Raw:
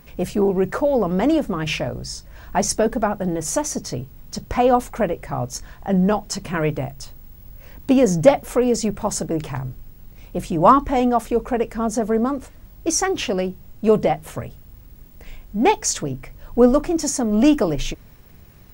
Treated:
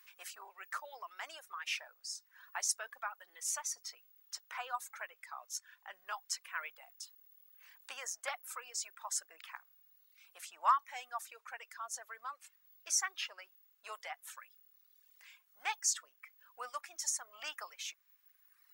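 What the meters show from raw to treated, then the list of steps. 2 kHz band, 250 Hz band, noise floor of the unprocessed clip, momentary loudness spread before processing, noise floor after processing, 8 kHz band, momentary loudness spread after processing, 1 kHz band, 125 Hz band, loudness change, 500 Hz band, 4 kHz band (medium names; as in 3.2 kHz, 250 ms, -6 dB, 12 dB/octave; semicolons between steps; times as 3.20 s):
-11.5 dB, under -40 dB, -45 dBFS, 15 LU, -72 dBFS, -10.0 dB, 22 LU, -17.5 dB, under -40 dB, -19.5 dB, -36.5 dB, -12.0 dB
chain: high-pass 1.2 kHz 24 dB/octave; reverb removal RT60 1.4 s; dynamic bell 3.2 kHz, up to -4 dB, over -42 dBFS, Q 0.82; trim -8.5 dB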